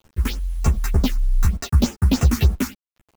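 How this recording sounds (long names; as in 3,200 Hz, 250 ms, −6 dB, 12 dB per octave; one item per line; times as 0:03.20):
aliases and images of a low sample rate 10,000 Hz, jitter 0%
phaser sweep stages 4, 3.3 Hz, lowest notch 500–4,300 Hz
a quantiser's noise floor 8 bits, dither none
a shimmering, thickened sound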